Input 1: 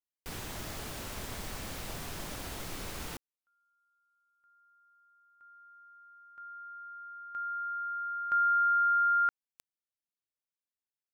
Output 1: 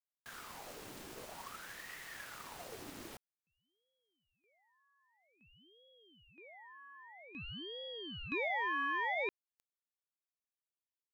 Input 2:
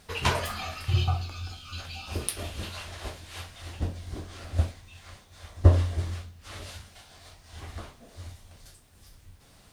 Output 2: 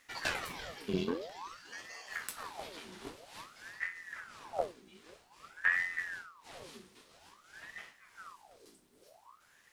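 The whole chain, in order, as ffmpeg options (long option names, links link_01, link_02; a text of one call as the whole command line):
ffmpeg -i in.wav -af "aeval=exprs='(tanh(8.91*val(0)+0.6)-tanh(0.6))/8.91':channel_layout=same,aeval=exprs='val(0)*sin(2*PI*1100*n/s+1100*0.75/0.51*sin(2*PI*0.51*n/s))':channel_layout=same,volume=-3.5dB" out.wav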